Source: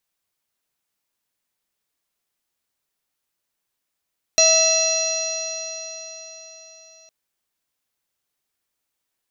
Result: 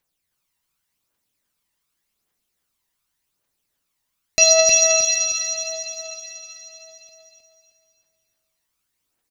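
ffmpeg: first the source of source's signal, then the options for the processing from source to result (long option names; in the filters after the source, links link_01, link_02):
-f lavfi -i "aevalsrc='0.133*pow(10,-3*t/4.36)*sin(2*PI*644.25*t)+0.0188*pow(10,-3*t/4.36)*sin(2*PI*1295.99*t)+0.0224*pow(10,-3*t/4.36)*sin(2*PI*1962.56*t)+0.0794*pow(10,-3*t/4.36)*sin(2*PI*2651.03*t)+0.015*pow(10,-3*t/4.36)*sin(2*PI*3368.09*t)+0.133*pow(10,-3*t/4.36)*sin(2*PI*4119.94*t)+0.0266*pow(10,-3*t/4.36)*sin(2*PI*4912.28*t)+0.211*pow(10,-3*t/4.36)*sin(2*PI*5750.25*t)+0.0501*pow(10,-3*t/4.36)*sin(2*PI*6638.42*t)':duration=2.71:sample_rate=44100"
-filter_complex "[0:a]aphaser=in_gain=1:out_gain=1:delay=1.1:decay=0.6:speed=0.87:type=triangular,asplit=2[link_01][link_02];[link_02]aecho=0:1:313|626|939|1252|1565:0.631|0.246|0.096|0.0374|0.0146[link_03];[link_01][link_03]amix=inputs=2:normalize=0"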